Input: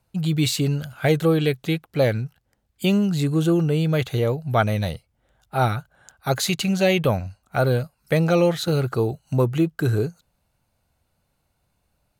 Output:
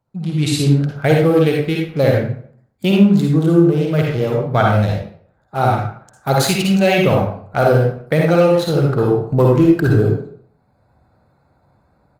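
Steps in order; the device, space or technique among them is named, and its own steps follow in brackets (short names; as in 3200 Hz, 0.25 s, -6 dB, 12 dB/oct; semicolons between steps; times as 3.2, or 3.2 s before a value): Wiener smoothing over 15 samples; 1.55–2.1 bell 760 Hz -3 dB 0.85 oct; far-field microphone of a smart speaker (reverb RT60 0.55 s, pre-delay 48 ms, DRR -2 dB; HPF 92 Hz 12 dB/oct; AGC gain up to 14 dB; gain -1 dB; Opus 32 kbps 48000 Hz)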